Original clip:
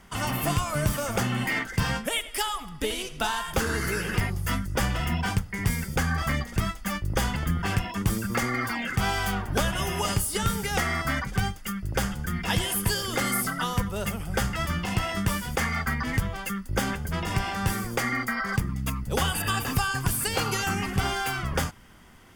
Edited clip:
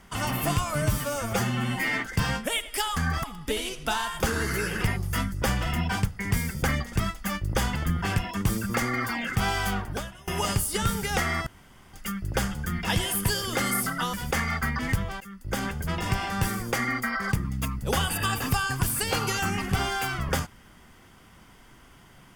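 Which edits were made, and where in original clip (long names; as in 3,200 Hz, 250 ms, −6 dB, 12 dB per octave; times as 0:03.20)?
0:00.82–0:01.61: time-stretch 1.5×
0:06.01–0:06.28: move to 0:02.57
0:09.40–0:09.88: fade out quadratic, to −23 dB
0:11.07–0:11.54: fill with room tone
0:13.74–0:15.38: remove
0:16.45–0:16.98: fade in, from −18 dB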